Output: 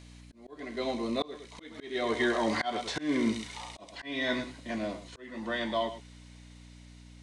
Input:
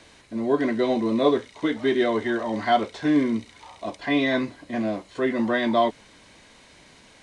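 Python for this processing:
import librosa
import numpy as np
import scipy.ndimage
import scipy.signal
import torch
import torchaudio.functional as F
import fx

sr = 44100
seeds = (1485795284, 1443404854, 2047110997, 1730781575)

y = fx.doppler_pass(x, sr, speed_mps=9, closest_m=5.7, pass_at_s=3.06)
y = y + 10.0 ** (-12.5 / 20.0) * np.pad(y, (int(109 * sr / 1000.0), 0))[:len(y)]
y = fx.add_hum(y, sr, base_hz=60, snr_db=19)
y = fx.low_shelf(y, sr, hz=180.0, db=-6.0)
y = fx.auto_swell(y, sr, attack_ms=397.0)
y = fx.high_shelf(y, sr, hz=2000.0, db=8.5)
y = fx.notch(y, sr, hz=1600.0, q=19.0)
y = y * librosa.db_to_amplitude(2.0)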